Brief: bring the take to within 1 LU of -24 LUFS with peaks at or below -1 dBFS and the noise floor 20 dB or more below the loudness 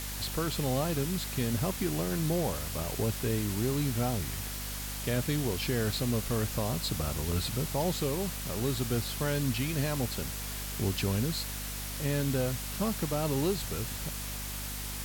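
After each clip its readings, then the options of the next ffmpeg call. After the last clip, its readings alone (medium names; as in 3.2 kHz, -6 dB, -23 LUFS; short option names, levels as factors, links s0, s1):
hum 50 Hz; highest harmonic 250 Hz; hum level -38 dBFS; noise floor -38 dBFS; noise floor target -52 dBFS; loudness -31.5 LUFS; peak level -17.5 dBFS; loudness target -24.0 LUFS
-> -af "bandreject=f=50:t=h:w=4,bandreject=f=100:t=h:w=4,bandreject=f=150:t=h:w=4,bandreject=f=200:t=h:w=4,bandreject=f=250:t=h:w=4"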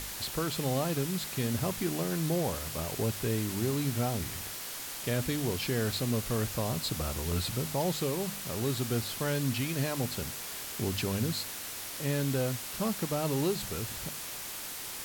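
hum not found; noise floor -40 dBFS; noise floor target -52 dBFS
-> -af "afftdn=nr=12:nf=-40"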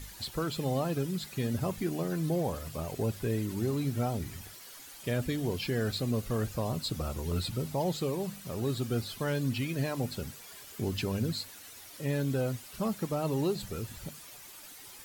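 noise floor -49 dBFS; noise floor target -53 dBFS
-> -af "afftdn=nr=6:nf=-49"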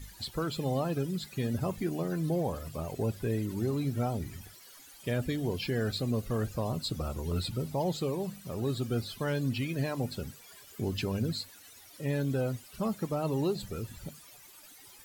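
noise floor -54 dBFS; loudness -33.0 LUFS; peak level -19.5 dBFS; loudness target -24.0 LUFS
-> -af "volume=2.82"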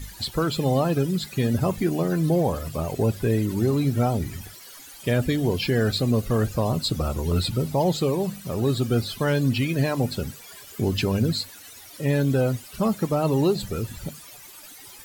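loudness -24.0 LUFS; peak level -10.5 dBFS; noise floor -45 dBFS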